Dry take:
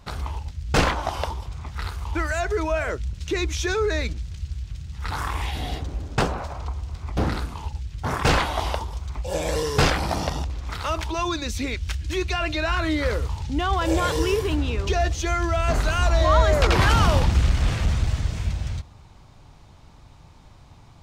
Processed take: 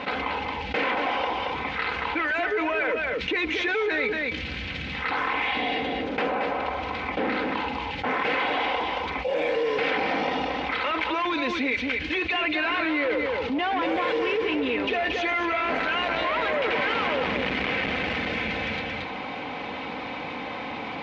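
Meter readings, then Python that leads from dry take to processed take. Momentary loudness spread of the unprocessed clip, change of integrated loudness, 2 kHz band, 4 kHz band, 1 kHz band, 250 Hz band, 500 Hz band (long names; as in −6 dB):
14 LU, −1.5 dB, +4.5 dB, 0.0 dB, +0.5 dB, −0.5 dB, −0.5 dB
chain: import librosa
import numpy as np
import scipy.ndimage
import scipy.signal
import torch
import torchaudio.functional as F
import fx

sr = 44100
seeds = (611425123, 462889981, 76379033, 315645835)

p1 = fx.tilt_eq(x, sr, slope=1.5)
p2 = p1 + 0.53 * np.pad(p1, (int(3.9 * sr / 1000.0), 0))[:len(p1)]
p3 = np.clip(10.0 ** (24.0 / 20.0) * p2, -1.0, 1.0) / 10.0 ** (24.0 / 20.0)
p4 = fx.cabinet(p3, sr, low_hz=250.0, low_slope=12, high_hz=3000.0, hz=(260.0, 460.0, 1200.0, 2200.0), db=(3, 5, -5, 6))
p5 = p4 + fx.echo_single(p4, sr, ms=227, db=-8.0, dry=0)
p6 = fx.env_flatten(p5, sr, amount_pct=70)
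y = F.gain(torch.from_numpy(p6), -2.5).numpy()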